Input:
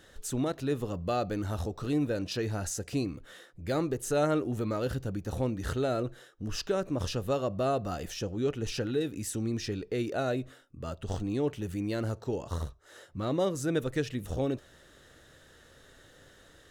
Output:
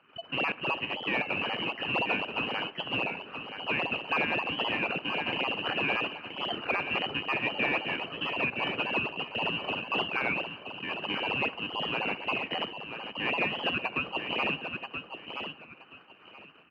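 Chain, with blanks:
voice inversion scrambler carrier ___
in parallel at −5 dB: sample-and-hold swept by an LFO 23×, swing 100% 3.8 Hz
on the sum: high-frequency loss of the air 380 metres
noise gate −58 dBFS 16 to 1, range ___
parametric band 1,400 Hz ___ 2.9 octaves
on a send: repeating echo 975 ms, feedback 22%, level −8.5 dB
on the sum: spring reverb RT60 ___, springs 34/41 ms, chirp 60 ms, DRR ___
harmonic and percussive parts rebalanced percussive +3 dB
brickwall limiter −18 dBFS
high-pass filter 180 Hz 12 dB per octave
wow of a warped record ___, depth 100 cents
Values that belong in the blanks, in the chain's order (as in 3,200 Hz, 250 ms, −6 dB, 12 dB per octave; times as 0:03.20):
3,000 Hz, −8 dB, +3 dB, 1.5 s, 17.5 dB, 33 1/3 rpm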